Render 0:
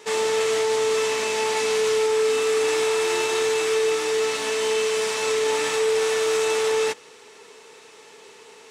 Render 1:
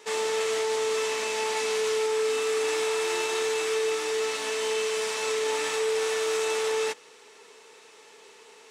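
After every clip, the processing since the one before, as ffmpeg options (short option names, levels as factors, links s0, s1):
-af "lowshelf=f=170:g=-10.5,volume=0.631"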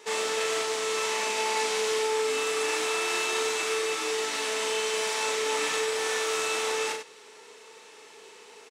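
-af "aecho=1:1:37.9|96.21:0.631|0.398"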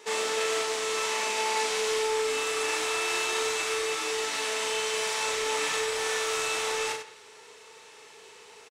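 -filter_complex "[0:a]asubboost=boost=7:cutoff=89,asplit=2[s0][s1];[s1]adelay=170,highpass=300,lowpass=3400,asoftclip=type=hard:threshold=0.0631,volume=0.141[s2];[s0][s2]amix=inputs=2:normalize=0"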